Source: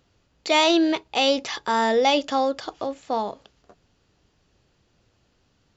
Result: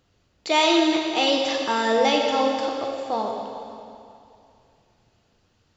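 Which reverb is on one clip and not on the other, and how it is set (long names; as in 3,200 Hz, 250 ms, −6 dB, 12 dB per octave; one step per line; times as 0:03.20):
dense smooth reverb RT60 2.5 s, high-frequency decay 0.95×, DRR 0.5 dB
level −2 dB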